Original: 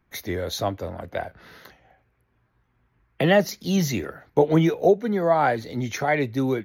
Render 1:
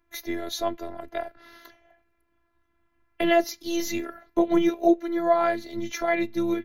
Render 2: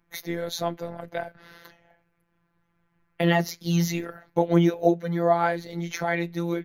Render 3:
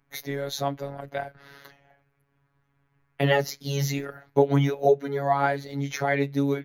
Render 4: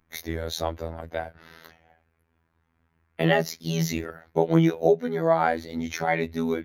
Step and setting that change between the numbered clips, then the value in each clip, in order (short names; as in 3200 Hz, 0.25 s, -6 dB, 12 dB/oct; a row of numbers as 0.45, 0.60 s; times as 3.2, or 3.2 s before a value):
robotiser, frequency: 340, 170, 140, 82 Hz